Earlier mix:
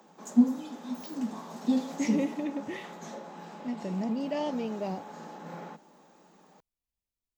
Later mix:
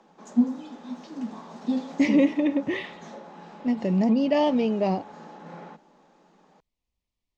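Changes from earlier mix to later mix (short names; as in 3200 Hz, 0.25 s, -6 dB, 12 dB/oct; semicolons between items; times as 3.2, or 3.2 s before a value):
speech +10.0 dB; master: add LPF 5100 Hz 12 dB/oct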